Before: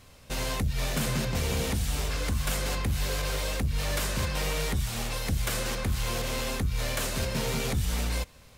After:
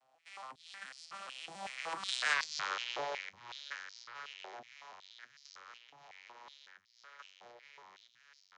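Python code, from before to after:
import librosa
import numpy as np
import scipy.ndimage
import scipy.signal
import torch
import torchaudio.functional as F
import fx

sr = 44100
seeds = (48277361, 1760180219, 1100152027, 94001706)

y = fx.vocoder_arp(x, sr, chord='major triad', root=45, every_ms=167)
y = fx.doppler_pass(y, sr, speed_mps=55, closest_m=10.0, pass_at_s=2.39)
y = fx.filter_held_highpass(y, sr, hz=5.4, low_hz=740.0, high_hz=4800.0)
y = F.gain(torch.from_numpy(y), 12.5).numpy()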